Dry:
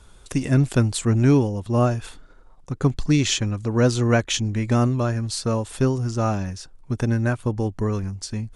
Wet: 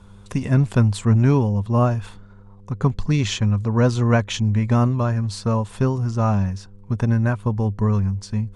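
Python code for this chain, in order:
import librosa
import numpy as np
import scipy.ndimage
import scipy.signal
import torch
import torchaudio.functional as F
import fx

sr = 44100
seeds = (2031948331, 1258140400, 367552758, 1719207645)

y = fx.high_shelf(x, sr, hz=4900.0, db=-9.5)
y = fx.dmg_buzz(y, sr, base_hz=100.0, harmonics=5, level_db=-53.0, tilt_db=-4, odd_only=False)
y = fx.graphic_eq_31(y, sr, hz=(100, 200, 315, 1000), db=(8, 7, -8, 7))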